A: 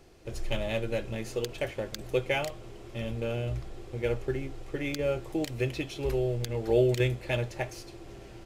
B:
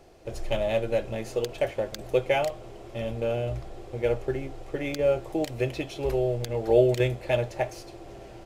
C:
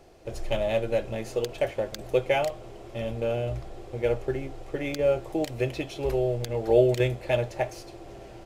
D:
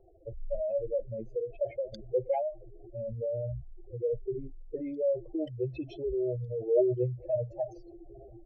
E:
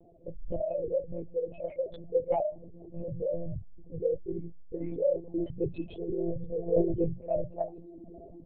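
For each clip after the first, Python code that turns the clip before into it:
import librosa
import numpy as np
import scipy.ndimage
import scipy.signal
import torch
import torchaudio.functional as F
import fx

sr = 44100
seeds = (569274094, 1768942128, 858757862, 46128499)

y1 = fx.peak_eq(x, sr, hz=660.0, db=8.5, octaves=1.0)
y2 = y1
y3 = fx.spec_expand(y2, sr, power=3.4)
y3 = F.gain(torch.from_numpy(y3), -4.5).numpy()
y4 = fx.lpc_monotone(y3, sr, seeds[0], pitch_hz=170.0, order=8)
y4 = F.gain(torch.from_numpy(y4), 1.5).numpy()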